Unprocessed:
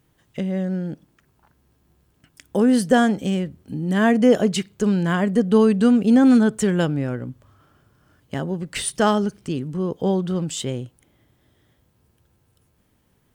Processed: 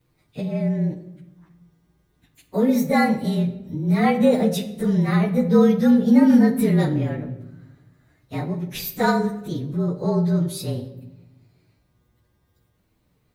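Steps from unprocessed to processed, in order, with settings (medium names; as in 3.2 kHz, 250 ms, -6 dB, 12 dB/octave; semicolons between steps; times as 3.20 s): frequency axis rescaled in octaves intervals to 110%; simulated room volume 370 m³, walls mixed, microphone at 0.48 m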